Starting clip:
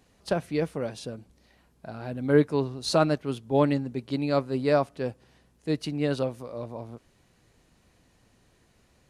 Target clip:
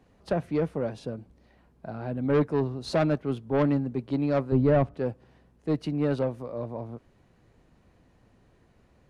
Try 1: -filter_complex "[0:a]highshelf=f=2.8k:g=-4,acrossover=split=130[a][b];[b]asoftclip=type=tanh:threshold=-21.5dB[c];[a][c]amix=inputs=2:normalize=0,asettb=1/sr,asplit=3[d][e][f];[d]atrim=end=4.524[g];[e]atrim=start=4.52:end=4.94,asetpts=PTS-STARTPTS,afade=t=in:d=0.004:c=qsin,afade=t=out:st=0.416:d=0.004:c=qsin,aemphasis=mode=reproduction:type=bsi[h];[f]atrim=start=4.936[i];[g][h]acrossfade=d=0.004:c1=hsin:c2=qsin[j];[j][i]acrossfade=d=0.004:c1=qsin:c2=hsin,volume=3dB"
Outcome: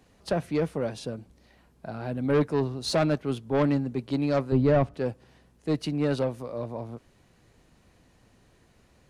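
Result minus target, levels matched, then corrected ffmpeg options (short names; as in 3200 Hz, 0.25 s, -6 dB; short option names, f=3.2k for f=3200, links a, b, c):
4000 Hz band +6.5 dB
-filter_complex "[0:a]highshelf=f=2.8k:g=-15.5,acrossover=split=130[a][b];[b]asoftclip=type=tanh:threshold=-21.5dB[c];[a][c]amix=inputs=2:normalize=0,asettb=1/sr,asplit=3[d][e][f];[d]atrim=end=4.524[g];[e]atrim=start=4.52:end=4.94,asetpts=PTS-STARTPTS,afade=t=in:d=0.004:c=qsin,afade=t=out:st=0.416:d=0.004:c=qsin,aemphasis=mode=reproduction:type=bsi[h];[f]atrim=start=4.936[i];[g][h]acrossfade=d=0.004:c1=hsin:c2=qsin[j];[j][i]acrossfade=d=0.004:c1=qsin:c2=hsin,volume=3dB"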